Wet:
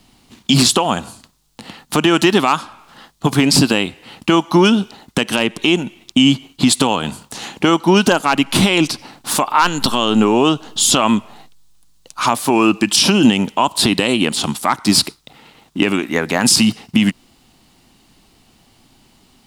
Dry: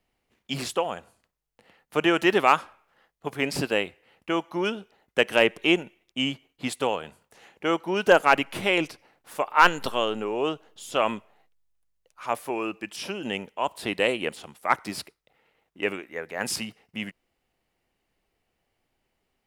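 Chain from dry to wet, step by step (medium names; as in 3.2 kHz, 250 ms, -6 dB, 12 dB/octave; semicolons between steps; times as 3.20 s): compression 4:1, threshold -32 dBFS, peak gain reduction 17.5 dB; graphic EQ 125/250/500/1000/2000/4000/8000 Hz +4/+9/-8/+4/-6/+8/+6 dB; loudness maximiser +22.5 dB; trim -1 dB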